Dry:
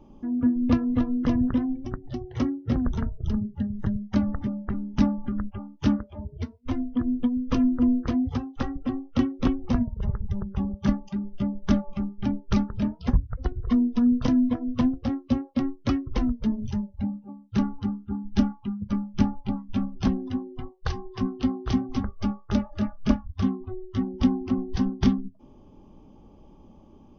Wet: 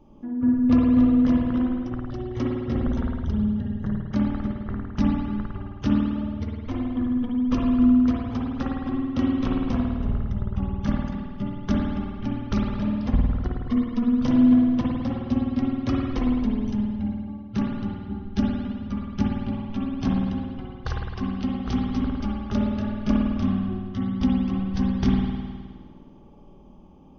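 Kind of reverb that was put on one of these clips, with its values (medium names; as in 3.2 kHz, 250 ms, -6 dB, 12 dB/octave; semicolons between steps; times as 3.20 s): spring tank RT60 1.7 s, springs 52 ms, chirp 65 ms, DRR -2.5 dB; trim -2.5 dB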